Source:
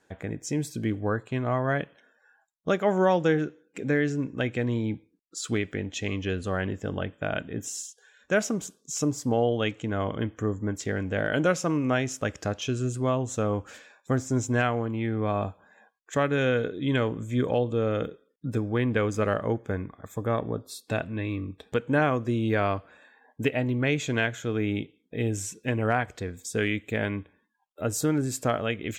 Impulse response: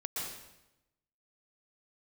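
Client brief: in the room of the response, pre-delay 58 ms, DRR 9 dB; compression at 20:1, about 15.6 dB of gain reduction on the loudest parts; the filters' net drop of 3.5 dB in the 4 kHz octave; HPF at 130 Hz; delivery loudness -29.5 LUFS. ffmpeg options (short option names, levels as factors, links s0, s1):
-filter_complex "[0:a]highpass=130,equalizer=f=4000:t=o:g=-5,acompressor=threshold=0.02:ratio=20,asplit=2[s0][s1];[1:a]atrim=start_sample=2205,adelay=58[s2];[s1][s2]afir=irnorm=-1:irlink=0,volume=0.266[s3];[s0][s3]amix=inputs=2:normalize=0,volume=3.35"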